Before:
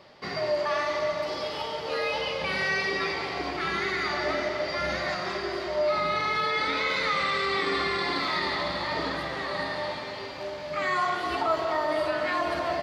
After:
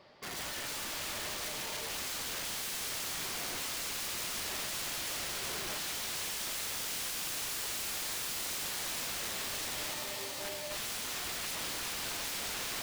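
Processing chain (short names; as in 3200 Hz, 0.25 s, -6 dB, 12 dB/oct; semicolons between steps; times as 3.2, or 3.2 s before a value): wrapped overs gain 28.5 dB; thin delay 0.372 s, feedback 83%, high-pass 2400 Hz, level -5 dB; gain -6.5 dB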